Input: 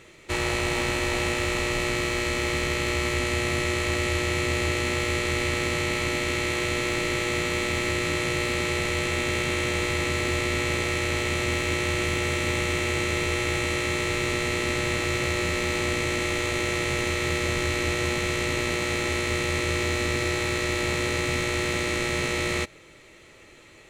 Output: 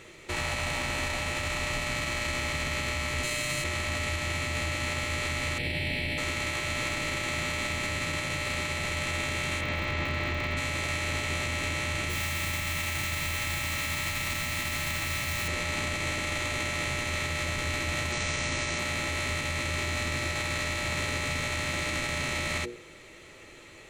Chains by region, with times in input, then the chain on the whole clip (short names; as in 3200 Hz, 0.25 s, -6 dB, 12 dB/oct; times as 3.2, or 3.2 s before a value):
3.23–3.64 high shelf 5500 Hz +10.5 dB + comb 6.6 ms, depth 75%
5.58–6.18 high shelf 9500 Hz -7 dB + fixed phaser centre 2900 Hz, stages 4
9.6–10.56 air absorption 170 m + crackle 100/s -33 dBFS
12.09–15.48 de-hum 130.9 Hz, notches 31 + modulation noise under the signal 11 dB + bell 440 Hz -8.5 dB 1.2 oct
18.12–18.79 steep low-pass 9700 Hz 96 dB/oct + bell 5700 Hz +6 dB 0.49 oct
whole clip: notches 60/120/180/240/300/360/420/480 Hz; limiter -23 dBFS; gain +1.5 dB